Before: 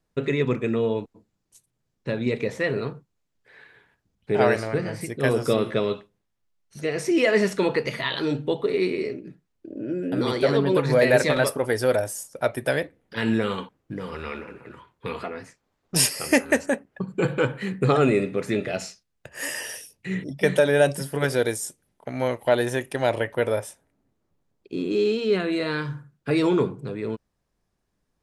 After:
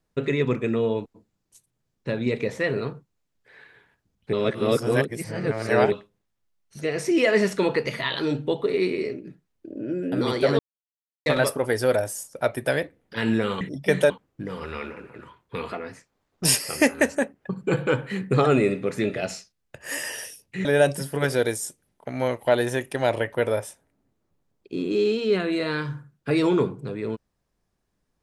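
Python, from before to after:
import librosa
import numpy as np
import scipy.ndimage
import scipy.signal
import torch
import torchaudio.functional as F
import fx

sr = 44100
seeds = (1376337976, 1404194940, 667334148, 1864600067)

y = fx.edit(x, sr, fx.reverse_span(start_s=4.33, length_s=1.59),
    fx.silence(start_s=10.59, length_s=0.67),
    fx.move(start_s=20.16, length_s=0.49, to_s=13.61), tone=tone)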